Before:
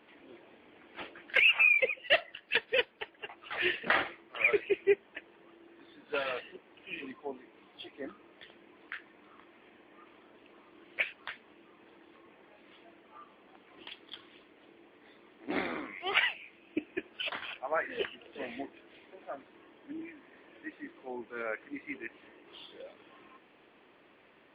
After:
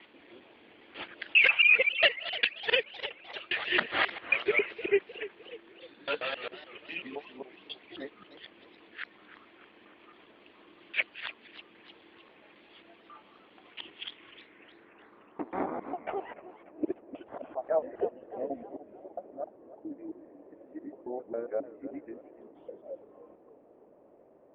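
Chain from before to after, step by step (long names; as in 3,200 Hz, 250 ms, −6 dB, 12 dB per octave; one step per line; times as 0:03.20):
reversed piece by piece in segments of 135 ms
low-pass filter sweep 4,300 Hz → 600 Hz, 0:13.53–0:16.20
feedback echo with a swinging delay time 300 ms, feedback 53%, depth 201 cents, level −15 dB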